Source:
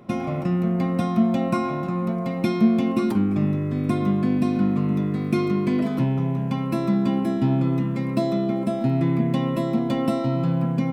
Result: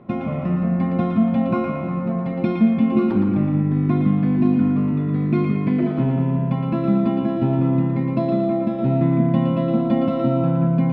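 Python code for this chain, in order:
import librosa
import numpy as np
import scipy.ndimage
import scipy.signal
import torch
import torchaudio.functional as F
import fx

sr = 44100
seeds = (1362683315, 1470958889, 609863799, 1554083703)

y = fx.air_absorb(x, sr, metres=400.0)
y = fx.echo_split(y, sr, split_hz=320.0, low_ms=166, high_ms=115, feedback_pct=52, wet_db=-5.0)
y = F.gain(torch.from_numpy(y), 2.0).numpy()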